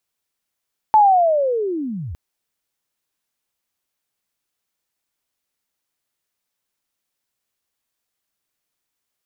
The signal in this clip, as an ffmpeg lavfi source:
-f lavfi -i "aevalsrc='pow(10,(-7.5-19.5*t/1.21)/20)*sin(2*PI*(880*t-815*t*t/(2*1.21)))':d=1.21:s=44100"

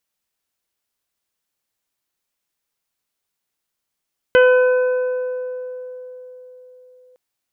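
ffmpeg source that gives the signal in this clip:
-f lavfi -i "aevalsrc='0.398*pow(10,-3*t/4.2)*sin(2*PI*504*t)+0.075*pow(10,-3*t/2.55)*sin(2*PI*1008*t)+0.188*pow(10,-3*t/2.18)*sin(2*PI*1512*t)+0.0596*pow(10,-3*t/0.26)*sin(2*PI*2016*t)+0.0447*pow(10,-3*t/1.64)*sin(2*PI*2520*t)+0.0531*pow(10,-3*t/0.54)*sin(2*PI*3024*t)':d=2.81:s=44100"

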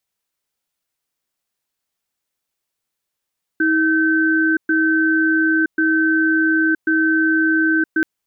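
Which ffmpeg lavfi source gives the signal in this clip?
-f lavfi -i "aevalsrc='0.158*(sin(2*PI*319*t)+sin(2*PI*1540*t))*clip(min(mod(t,1.09),0.97-mod(t,1.09))/0.005,0,1)':d=4.43:s=44100"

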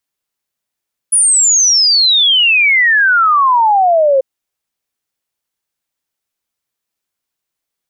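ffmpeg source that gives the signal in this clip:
-f lavfi -i "aevalsrc='0.447*clip(min(t,3.09-t)/0.01,0,1)*sin(2*PI*10000*3.09/log(520/10000)*(exp(log(520/10000)*t/3.09)-1))':d=3.09:s=44100"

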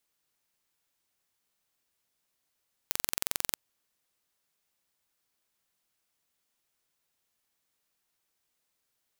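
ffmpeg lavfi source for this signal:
-f lavfi -i "aevalsrc='0.841*eq(mod(n,1978),0)':d=0.65:s=44100"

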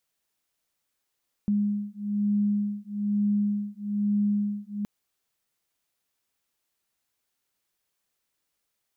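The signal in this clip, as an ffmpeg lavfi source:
-f lavfi -i "aevalsrc='0.0473*(sin(2*PI*205*t)+sin(2*PI*206.1*t))':d=3.37:s=44100"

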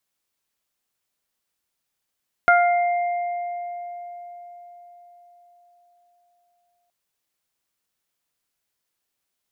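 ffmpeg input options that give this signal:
-f lavfi -i "aevalsrc='0.2*pow(10,-3*t/4.82)*sin(2*PI*702*t)+0.282*pow(10,-3*t/0.53)*sin(2*PI*1404*t)+0.0794*pow(10,-3*t/2.7)*sin(2*PI*2106*t)':d=4.42:s=44100"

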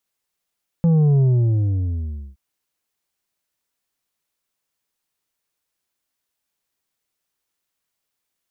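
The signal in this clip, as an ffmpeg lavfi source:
-f lavfi -i "aevalsrc='0.224*clip((1.52-t)/1.16,0,1)*tanh(2*sin(2*PI*170*1.52/log(65/170)*(exp(log(65/170)*t/1.52)-1)))/tanh(2)':d=1.52:s=44100"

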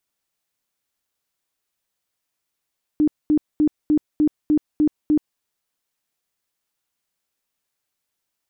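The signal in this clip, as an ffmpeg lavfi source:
-f lavfi -i "aevalsrc='0.224*sin(2*PI*302*mod(t,0.3))*lt(mod(t,0.3),23/302)':d=2.4:s=44100"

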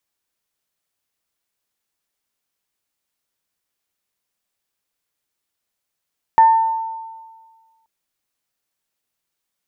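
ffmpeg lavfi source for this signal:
-f lavfi -i "aevalsrc='0.531*pow(10,-3*t/1.58)*sin(2*PI*898*t)+0.0562*pow(10,-3*t/0.64)*sin(2*PI*1796*t)':d=1.48:s=44100"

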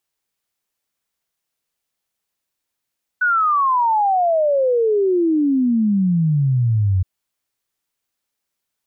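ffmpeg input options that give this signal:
-f lavfi -i "aevalsrc='0.211*clip(min(t,3.82-t)/0.01,0,1)*sin(2*PI*1500*3.82/log(90/1500)*(exp(log(90/1500)*t/3.82)-1))':d=3.82:s=44100"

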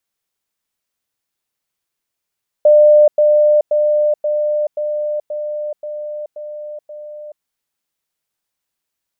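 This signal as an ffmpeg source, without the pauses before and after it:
-f lavfi -i "aevalsrc='pow(10,(-5-3*floor(t/0.53))/20)*sin(2*PI*599*t)*clip(min(mod(t,0.53),0.43-mod(t,0.53))/0.005,0,1)':d=4.77:s=44100"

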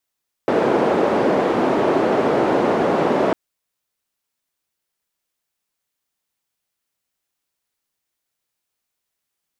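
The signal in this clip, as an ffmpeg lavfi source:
-f lavfi -i "anoisesrc=c=white:d=2.85:r=44100:seed=1,highpass=f=330,lowpass=f=450,volume=8dB"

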